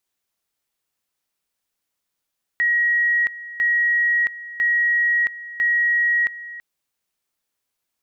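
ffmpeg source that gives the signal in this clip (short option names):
-f lavfi -i "aevalsrc='pow(10,(-15.5-16.5*gte(mod(t,1),0.67))/20)*sin(2*PI*1900*t)':d=4:s=44100"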